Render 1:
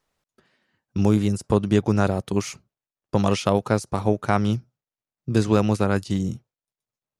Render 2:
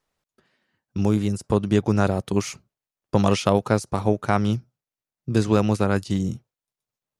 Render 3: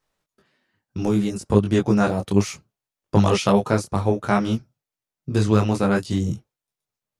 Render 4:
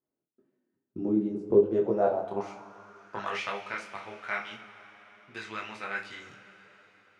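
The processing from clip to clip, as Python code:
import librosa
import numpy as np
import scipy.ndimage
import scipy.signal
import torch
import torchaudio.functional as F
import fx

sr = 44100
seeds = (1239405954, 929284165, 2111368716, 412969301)

y1 = fx.rider(x, sr, range_db=10, speed_s=2.0)
y2 = fx.detune_double(y1, sr, cents=22)
y2 = y2 * librosa.db_to_amplitude(5.0)
y3 = fx.rev_double_slope(y2, sr, seeds[0], early_s=0.35, late_s=4.7, knee_db=-18, drr_db=2.0)
y3 = fx.filter_sweep_bandpass(y3, sr, from_hz=300.0, to_hz=2100.0, start_s=1.26, end_s=3.56, q=3.3)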